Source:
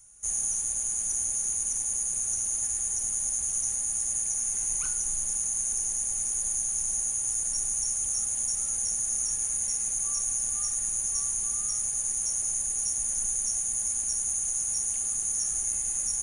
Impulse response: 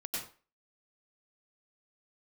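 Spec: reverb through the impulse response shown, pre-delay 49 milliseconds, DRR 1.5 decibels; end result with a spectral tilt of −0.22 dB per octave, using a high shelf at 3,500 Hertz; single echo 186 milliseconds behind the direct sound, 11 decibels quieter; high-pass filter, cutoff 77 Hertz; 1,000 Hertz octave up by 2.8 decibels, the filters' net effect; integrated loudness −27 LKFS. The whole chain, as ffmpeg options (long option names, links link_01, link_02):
-filter_complex "[0:a]highpass=77,equalizer=frequency=1000:width_type=o:gain=4.5,highshelf=frequency=3500:gain=-8.5,aecho=1:1:186:0.282,asplit=2[link_01][link_02];[1:a]atrim=start_sample=2205,adelay=49[link_03];[link_02][link_03]afir=irnorm=-1:irlink=0,volume=-3.5dB[link_04];[link_01][link_04]amix=inputs=2:normalize=0,volume=4dB"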